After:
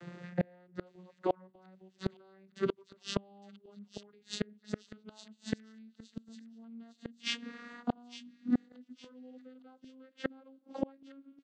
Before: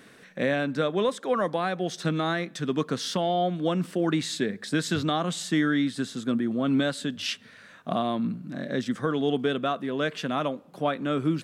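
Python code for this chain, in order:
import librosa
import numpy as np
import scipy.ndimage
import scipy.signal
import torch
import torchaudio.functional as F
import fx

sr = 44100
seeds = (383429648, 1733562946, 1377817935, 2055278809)

y = fx.vocoder_glide(x, sr, note=53, semitones=8)
y = fx.gate_flip(y, sr, shuts_db=-27.0, range_db=-37)
y = fx.echo_wet_highpass(y, sr, ms=860, feedback_pct=36, hz=3100.0, wet_db=-12.0)
y = y * 10.0 ** (9.0 / 20.0)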